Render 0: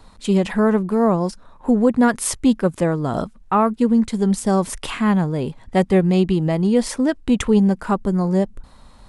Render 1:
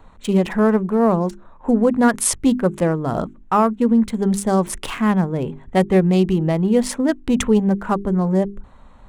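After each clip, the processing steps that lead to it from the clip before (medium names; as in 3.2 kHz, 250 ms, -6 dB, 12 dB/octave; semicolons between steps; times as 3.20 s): local Wiener filter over 9 samples; treble shelf 6 kHz +5.5 dB; hum notches 50/100/150/200/250/300/350/400 Hz; trim +1 dB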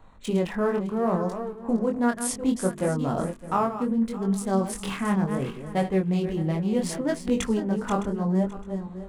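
backward echo that repeats 306 ms, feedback 43%, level -10 dB; chorus 0.69 Hz, delay 20 ms, depth 5.3 ms; gain riding within 3 dB 0.5 s; trim -5 dB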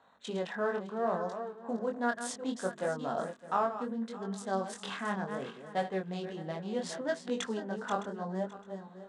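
cabinet simulation 280–7900 Hz, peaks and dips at 330 Hz -7 dB, 690 Hz +4 dB, 1.6 kHz +7 dB, 2.3 kHz -5 dB, 3.7 kHz +6 dB; trim -6.5 dB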